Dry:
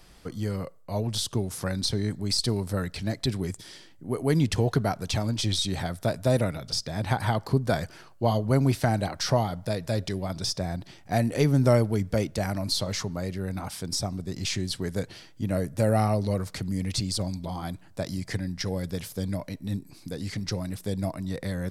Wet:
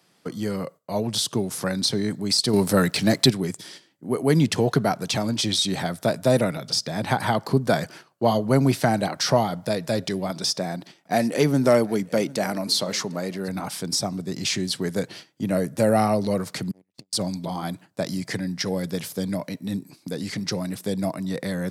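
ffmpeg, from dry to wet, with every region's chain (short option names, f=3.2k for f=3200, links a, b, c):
-filter_complex "[0:a]asettb=1/sr,asplit=3[a][b][c];[a]atrim=end=2.534[d];[b]atrim=start=2.53:end=3.3,asetpts=PTS-STARTPTS,afade=t=in:d=0.004:c=qsin,afade=t=out:st=0.766:d=0.004:c=qsin,acontrast=76,highshelf=f=5.5k:g=4.5,aeval=exprs='sgn(val(0))*max(abs(val(0))-0.00316,0)':c=same[e];[c]atrim=start=3.296[f];[d][e]acrossfade=d=0.004:c1=hsin:c2=qsin[g];[g][f]acrossfade=d=0.004:c1=qsin:c2=hsin,asettb=1/sr,asplit=3[h][i][j];[h]atrim=end=10.304[k];[i]atrim=start=10.3:end=13.48,asetpts=PTS-STARTPTS,afade=t=in:d=0.004:c=qsin,afade=t=out:st=3.176:d=0.004:c=qsin,equalizer=f=93:w=1.3:g=-10.5,asoftclip=type=hard:threshold=-13.5dB,aecho=1:1:752:0.0794,atrim=end_sample=140238[l];[j]atrim=start=13.476[m];[k][l]acrossfade=d=0.004:c1=hsin:c2=qsin[n];[n][m]acrossfade=d=0.004:c1=qsin:c2=hsin,asettb=1/sr,asplit=3[o][p][q];[o]atrim=end=16.714[r];[p]atrim=start=16.71:end=17.13,asetpts=PTS-STARTPTS,afade=t=in:d=0.004:c=qsin,afade=t=out:st=0.416:d=0.004:c=qsin,asubboost=boost=5.5:cutoff=94,aeval=exprs='clip(val(0),-1,0.0112)':c=same,agate=range=-41dB:threshold=-25dB:ratio=16:release=100:detection=peak[s];[q]atrim=start=17.126[t];[r][s]acrossfade=d=0.004:c1=hsin:c2=qsin[u];[u][t]acrossfade=d=0.004:c1=qsin:c2=hsin,agate=range=-11dB:threshold=-45dB:ratio=16:detection=peak,highpass=f=140:w=0.5412,highpass=f=140:w=1.3066,acontrast=33"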